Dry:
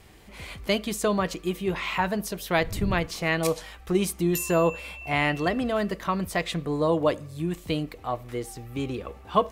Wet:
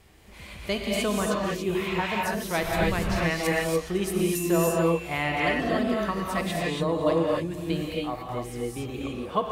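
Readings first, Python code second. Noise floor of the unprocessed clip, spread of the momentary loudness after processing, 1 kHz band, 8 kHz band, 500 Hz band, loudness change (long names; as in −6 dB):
−47 dBFS, 9 LU, −0.5 dB, 0.0 dB, +0.5 dB, +0.5 dB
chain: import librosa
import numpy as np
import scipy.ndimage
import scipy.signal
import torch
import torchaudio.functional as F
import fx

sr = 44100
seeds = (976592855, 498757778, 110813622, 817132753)

p1 = x + fx.echo_single(x, sr, ms=510, db=-19.5, dry=0)
p2 = fx.rev_gated(p1, sr, seeds[0], gate_ms=310, shape='rising', drr_db=-3.0)
y = F.gain(torch.from_numpy(p2), -4.5).numpy()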